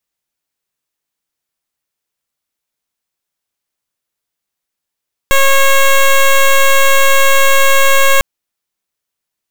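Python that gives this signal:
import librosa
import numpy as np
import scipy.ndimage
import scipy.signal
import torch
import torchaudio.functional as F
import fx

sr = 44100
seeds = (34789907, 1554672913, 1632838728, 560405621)

y = fx.pulse(sr, length_s=2.9, hz=546.0, level_db=-7.5, duty_pct=11)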